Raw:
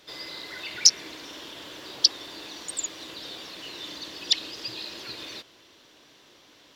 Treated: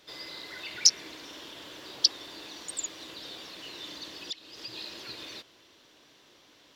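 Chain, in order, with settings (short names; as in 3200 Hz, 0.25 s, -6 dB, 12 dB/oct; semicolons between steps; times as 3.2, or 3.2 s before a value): 4.14–4.74 compressor 4:1, threshold -34 dBFS, peak gain reduction 15.5 dB; gain -3.5 dB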